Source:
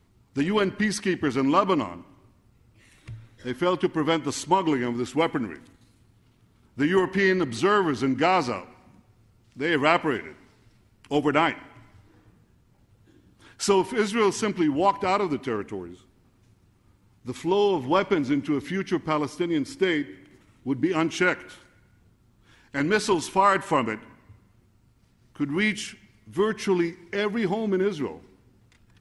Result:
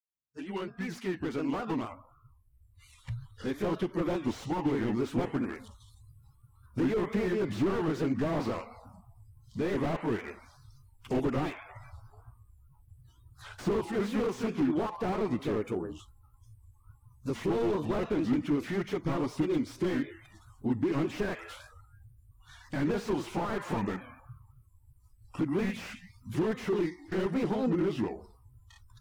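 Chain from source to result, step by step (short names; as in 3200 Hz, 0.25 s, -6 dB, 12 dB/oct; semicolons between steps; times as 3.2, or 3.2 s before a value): opening faded in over 4.45 s; compressor 2:1, threshold -38 dBFS, peak gain reduction 13 dB; spectral noise reduction 26 dB; grains 0.144 s, grains 20/s, spray 14 ms, pitch spread up and down by 3 st; slew limiter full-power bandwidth 8.1 Hz; gain +8.5 dB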